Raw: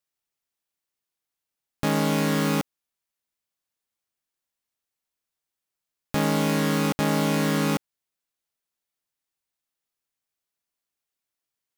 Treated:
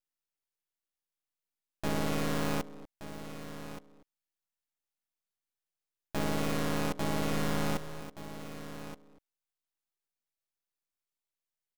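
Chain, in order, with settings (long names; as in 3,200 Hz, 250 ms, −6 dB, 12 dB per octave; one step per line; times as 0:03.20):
far-end echo of a speakerphone 240 ms, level −10 dB
half-wave rectification
single-tap delay 1,174 ms −12 dB
level −4.5 dB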